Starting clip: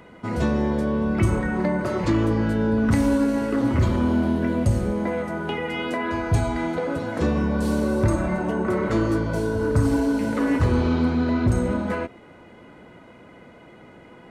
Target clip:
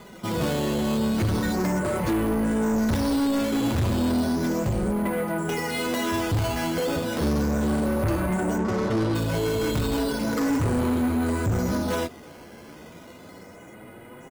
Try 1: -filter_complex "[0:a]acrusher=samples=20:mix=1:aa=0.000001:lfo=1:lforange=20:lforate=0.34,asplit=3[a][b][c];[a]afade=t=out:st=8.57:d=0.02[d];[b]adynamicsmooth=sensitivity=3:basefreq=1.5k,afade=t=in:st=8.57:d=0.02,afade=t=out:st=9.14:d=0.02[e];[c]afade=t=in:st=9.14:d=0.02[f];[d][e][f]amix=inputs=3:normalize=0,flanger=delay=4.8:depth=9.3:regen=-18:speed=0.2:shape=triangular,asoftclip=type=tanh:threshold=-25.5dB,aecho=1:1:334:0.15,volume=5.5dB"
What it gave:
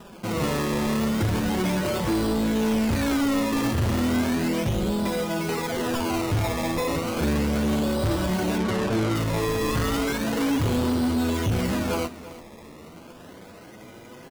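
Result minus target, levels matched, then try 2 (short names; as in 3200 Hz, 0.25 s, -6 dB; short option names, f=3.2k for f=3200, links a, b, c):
echo-to-direct +10.5 dB; decimation with a swept rate: distortion +7 dB
-filter_complex "[0:a]acrusher=samples=8:mix=1:aa=0.000001:lfo=1:lforange=8:lforate=0.34,asplit=3[a][b][c];[a]afade=t=out:st=8.57:d=0.02[d];[b]adynamicsmooth=sensitivity=3:basefreq=1.5k,afade=t=in:st=8.57:d=0.02,afade=t=out:st=9.14:d=0.02[e];[c]afade=t=in:st=9.14:d=0.02[f];[d][e][f]amix=inputs=3:normalize=0,flanger=delay=4.8:depth=9.3:regen=-18:speed=0.2:shape=triangular,asoftclip=type=tanh:threshold=-25.5dB,aecho=1:1:334:0.0447,volume=5.5dB"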